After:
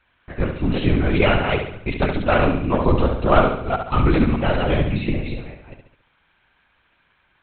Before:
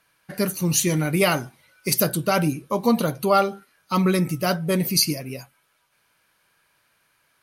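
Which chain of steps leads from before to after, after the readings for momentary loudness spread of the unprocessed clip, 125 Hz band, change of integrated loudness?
10 LU, +4.5 dB, +2.0 dB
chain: delay that plays each chunk backwards 198 ms, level −4.5 dB
linear-prediction vocoder at 8 kHz whisper
flutter between parallel walls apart 11.9 metres, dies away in 0.63 s
level +2 dB

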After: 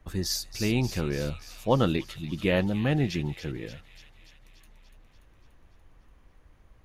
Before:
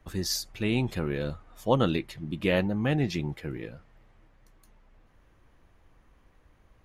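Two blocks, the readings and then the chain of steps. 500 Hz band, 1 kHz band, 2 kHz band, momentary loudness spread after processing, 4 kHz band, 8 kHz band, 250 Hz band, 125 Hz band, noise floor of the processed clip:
0.0 dB, 0.0 dB, 0.0 dB, 11 LU, +1.0 dB, +1.0 dB, +0.5 dB, +1.5 dB, −58 dBFS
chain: low-shelf EQ 89 Hz +5.5 dB
on a send: delay with a high-pass on its return 290 ms, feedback 65%, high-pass 3,100 Hz, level −7.5 dB

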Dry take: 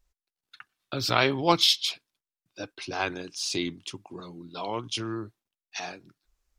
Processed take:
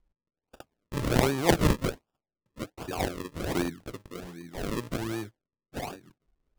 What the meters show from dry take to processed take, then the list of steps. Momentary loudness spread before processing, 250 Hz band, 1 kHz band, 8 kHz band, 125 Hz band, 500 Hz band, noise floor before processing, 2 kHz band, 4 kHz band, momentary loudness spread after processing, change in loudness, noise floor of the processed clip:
21 LU, +3.0 dB, −4.0 dB, −3.5 dB, +6.0 dB, +0.5 dB, below −85 dBFS, −3.5 dB, −12.5 dB, 18 LU, −3.0 dB, below −85 dBFS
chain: sample-and-hold swept by an LFO 41×, swing 100% 1.3 Hz

